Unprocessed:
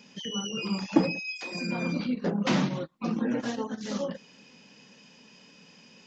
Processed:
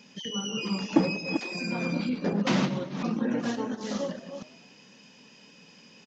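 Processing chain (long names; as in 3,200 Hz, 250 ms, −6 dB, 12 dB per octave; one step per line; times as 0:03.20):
delay that plays each chunk backwards 233 ms, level −8 dB
echo with shifted repeats 95 ms, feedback 50%, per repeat +53 Hz, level −18 dB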